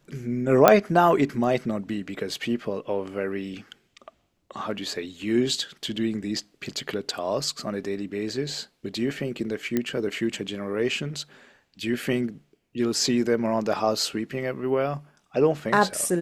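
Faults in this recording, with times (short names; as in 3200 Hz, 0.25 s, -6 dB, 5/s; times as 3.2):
0.68 pop -1 dBFS
9.77 pop -11 dBFS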